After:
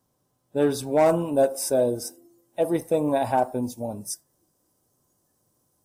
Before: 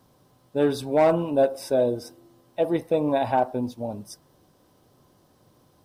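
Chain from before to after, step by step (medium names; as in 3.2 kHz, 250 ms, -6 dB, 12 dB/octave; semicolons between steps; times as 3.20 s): spectral noise reduction 13 dB; resonant high shelf 5.3 kHz +6 dB, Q 1.5, from 1.06 s +11.5 dB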